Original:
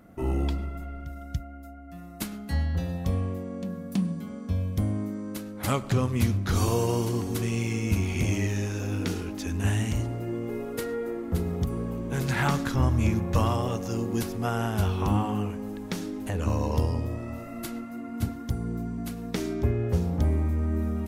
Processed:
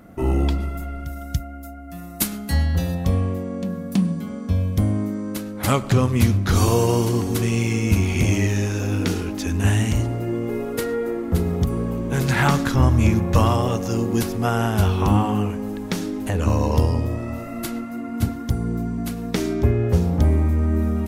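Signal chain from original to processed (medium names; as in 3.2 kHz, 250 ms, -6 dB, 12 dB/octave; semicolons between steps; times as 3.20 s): 0.60–2.95 s: treble shelf 5.7 kHz +10.5 dB; trim +7 dB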